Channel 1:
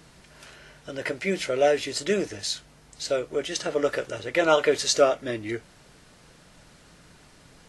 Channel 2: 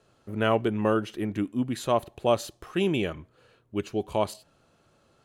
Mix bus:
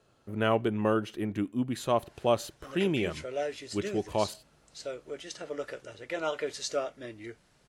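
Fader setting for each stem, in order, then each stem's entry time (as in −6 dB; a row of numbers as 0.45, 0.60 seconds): −12.0, −2.5 decibels; 1.75, 0.00 seconds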